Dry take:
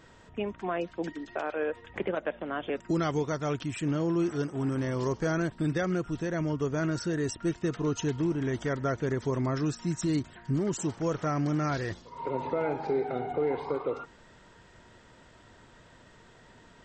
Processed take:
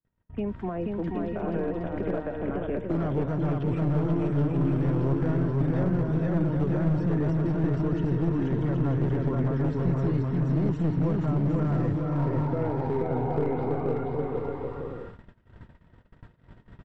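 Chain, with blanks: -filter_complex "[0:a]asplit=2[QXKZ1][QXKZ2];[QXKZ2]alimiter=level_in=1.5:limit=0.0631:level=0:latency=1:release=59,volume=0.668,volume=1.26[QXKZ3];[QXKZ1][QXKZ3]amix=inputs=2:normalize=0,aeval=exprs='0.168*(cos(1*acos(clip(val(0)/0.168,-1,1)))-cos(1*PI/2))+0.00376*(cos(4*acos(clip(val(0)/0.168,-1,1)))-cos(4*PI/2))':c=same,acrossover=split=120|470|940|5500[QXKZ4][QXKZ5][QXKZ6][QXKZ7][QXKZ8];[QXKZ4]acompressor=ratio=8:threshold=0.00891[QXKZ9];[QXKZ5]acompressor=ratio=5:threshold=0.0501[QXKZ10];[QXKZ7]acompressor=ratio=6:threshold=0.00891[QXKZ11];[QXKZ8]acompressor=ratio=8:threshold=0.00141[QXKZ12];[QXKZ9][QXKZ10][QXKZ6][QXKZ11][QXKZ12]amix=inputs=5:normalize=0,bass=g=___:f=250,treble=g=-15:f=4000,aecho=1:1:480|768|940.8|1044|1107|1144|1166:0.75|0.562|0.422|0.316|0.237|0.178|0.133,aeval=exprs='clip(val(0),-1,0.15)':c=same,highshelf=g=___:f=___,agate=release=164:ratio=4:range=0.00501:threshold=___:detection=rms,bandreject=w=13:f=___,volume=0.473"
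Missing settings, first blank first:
12, -5.5, 6600, 0.0251, 6400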